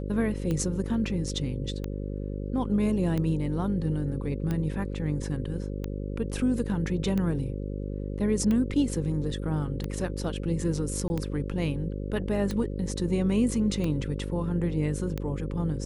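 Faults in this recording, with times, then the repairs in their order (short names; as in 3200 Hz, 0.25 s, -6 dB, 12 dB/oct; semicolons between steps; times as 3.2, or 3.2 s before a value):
buzz 50 Hz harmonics 11 -33 dBFS
tick 45 rpm -18 dBFS
11.08–11.1 gap 20 ms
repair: de-click; de-hum 50 Hz, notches 11; interpolate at 11.08, 20 ms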